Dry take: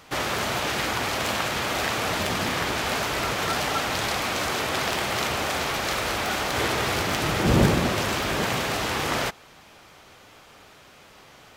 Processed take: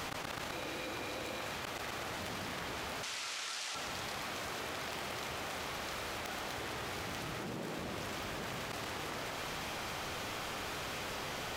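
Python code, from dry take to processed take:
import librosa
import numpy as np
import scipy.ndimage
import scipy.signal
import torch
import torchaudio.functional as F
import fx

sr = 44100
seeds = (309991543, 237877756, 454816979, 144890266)

y = fx.small_body(x, sr, hz=(330.0, 500.0, 2400.0, 3900.0), ring_ms=45, db=10, at=(0.52, 1.41))
y = fx.highpass(y, sr, hz=fx.line((7.33, 100.0), (7.78, 290.0)), slope=12, at=(7.33, 7.78), fade=0.02)
y = fx.gate_flip(y, sr, shuts_db=-17.0, range_db=-33)
y = fx.weighting(y, sr, curve='ITU-R 468', at=(3.03, 3.75))
y = fx.echo_feedback(y, sr, ms=127, feedback_pct=53, wet_db=-10)
y = fx.env_flatten(y, sr, amount_pct=100)
y = y * librosa.db_to_amplitude(-8.5)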